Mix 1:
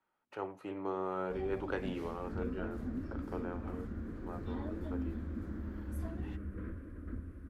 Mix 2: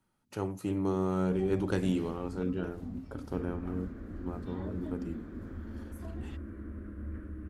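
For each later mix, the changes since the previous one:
speech: remove three-way crossover with the lows and the highs turned down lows −19 dB, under 400 Hz, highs −22 dB, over 3,000 Hz
second sound: entry +1.10 s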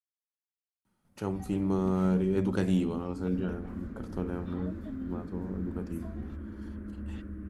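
speech: entry +0.85 s
master: add parametric band 200 Hz +7.5 dB 0.27 octaves

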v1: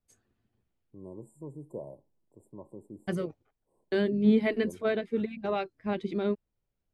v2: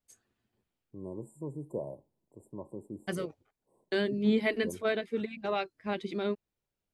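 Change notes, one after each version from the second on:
first voice +3.5 dB
second voice: add spectral tilt +2 dB per octave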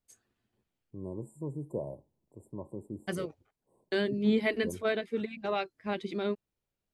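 first voice: add low-shelf EQ 89 Hz +11.5 dB

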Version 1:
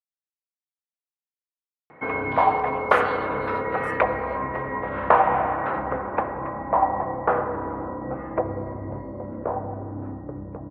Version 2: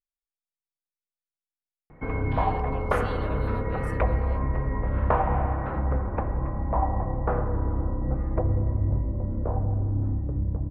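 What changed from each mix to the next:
background −8.5 dB
master: remove meter weighting curve A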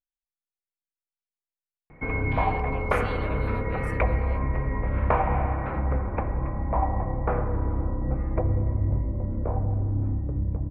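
master: add parametric band 2,300 Hz +10.5 dB 0.31 octaves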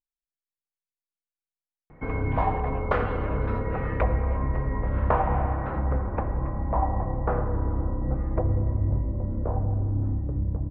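speech: add low-pass filter 2,600 Hz 24 dB per octave
master: add parametric band 2,300 Hz −10.5 dB 0.31 octaves

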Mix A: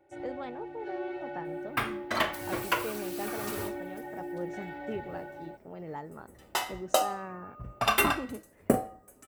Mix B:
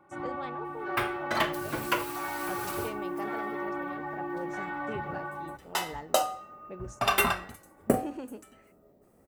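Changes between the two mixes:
speech: add spectral tilt +1.5 dB per octave
first sound: remove phaser with its sweep stopped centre 470 Hz, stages 4
second sound: entry −0.80 s

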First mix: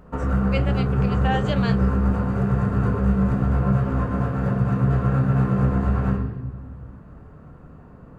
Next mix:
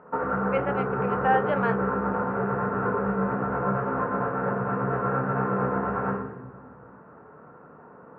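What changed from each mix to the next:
master: add loudspeaker in its box 270–2,100 Hz, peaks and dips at 280 Hz −3 dB, 460 Hz +5 dB, 900 Hz +7 dB, 1,400 Hz +6 dB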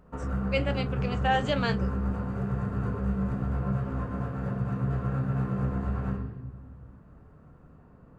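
background −9.0 dB
master: remove loudspeaker in its box 270–2,100 Hz, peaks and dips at 280 Hz −3 dB, 460 Hz +5 dB, 900 Hz +7 dB, 1,400 Hz +6 dB

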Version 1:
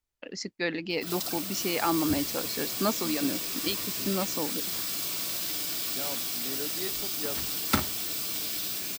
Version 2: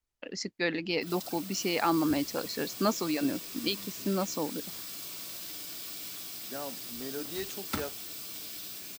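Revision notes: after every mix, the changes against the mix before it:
second voice: entry +0.55 s
background −9.0 dB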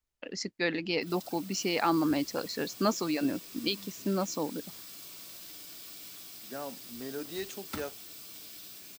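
background −5.5 dB

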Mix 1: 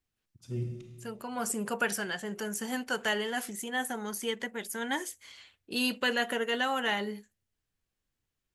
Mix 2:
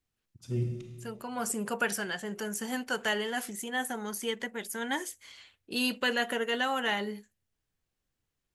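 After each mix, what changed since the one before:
first voice +3.5 dB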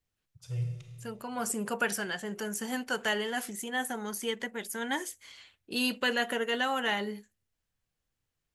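first voice: add elliptic band-stop filter 160–450 Hz

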